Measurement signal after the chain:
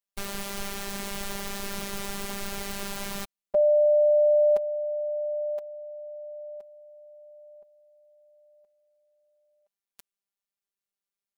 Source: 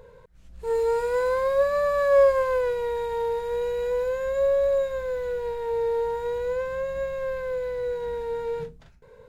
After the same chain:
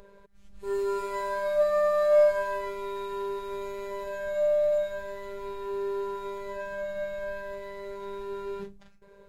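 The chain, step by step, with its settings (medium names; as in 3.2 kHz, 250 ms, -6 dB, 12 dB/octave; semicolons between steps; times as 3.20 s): robot voice 199 Hz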